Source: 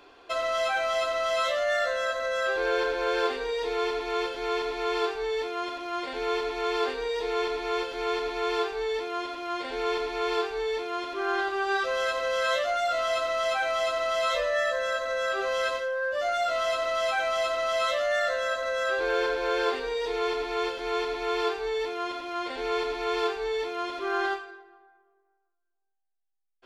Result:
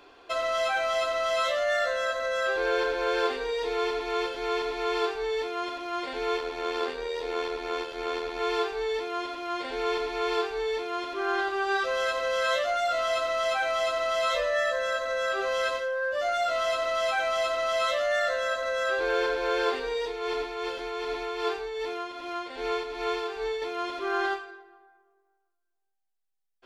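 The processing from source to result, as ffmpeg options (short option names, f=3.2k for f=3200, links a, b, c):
-filter_complex "[0:a]asplit=3[a][b][c];[a]afade=t=out:st=6.36:d=0.02[d];[b]tremolo=f=81:d=0.571,afade=t=in:st=6.36:d=0.02,afade=t=out:st=8.39:d=0.02[e];[c]afade=t=in:st=8.39:d=0.02[f];[d][e][f]amix=inputs=3:normalize=0,asettb=1/sr,asplit=3[g][h][i];[g]atrim=end=19.994[j];[h]atrim=start=19.99:end=23.62,asetpts=PTS-STARTPTS,afade=t=in:d=0.004:c=qsin,afade=t=out:st=3.626:d=0.004:c=qsin,tremolo=f=2.6:d=0.51[k];[i]atrim=start=23.616[l];[j][k]acrossfade=d=0.004:c1=hsin:c2=qsin[m];[m][l]acrossfade=d=0.004:c1=qsin:c2=hsin"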